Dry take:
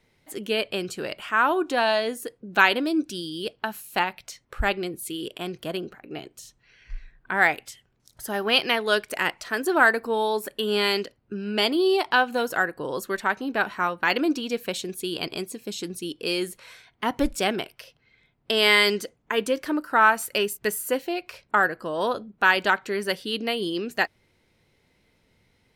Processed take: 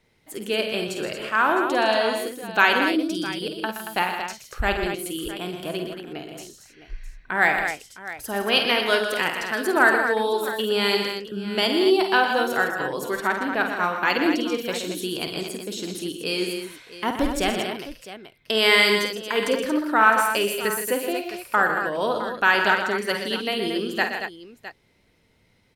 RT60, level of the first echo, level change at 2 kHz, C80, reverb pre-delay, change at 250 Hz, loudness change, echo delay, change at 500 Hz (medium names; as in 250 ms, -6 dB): no reverb, -8.0 dB, +2.0 dB, no reverb, no reverb, +2.0 dB, +2.0 dB, 50 ms, +2.0 dB